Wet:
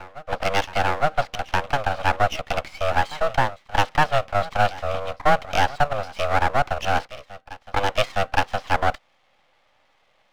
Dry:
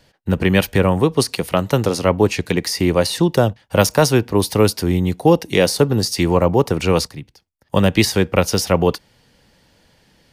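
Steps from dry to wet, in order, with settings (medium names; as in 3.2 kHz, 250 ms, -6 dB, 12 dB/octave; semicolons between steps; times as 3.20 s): reverse echo 864 ms -18 dB; mistuned SSB +300 Hz 240–3100 Hz; half-wave rectifier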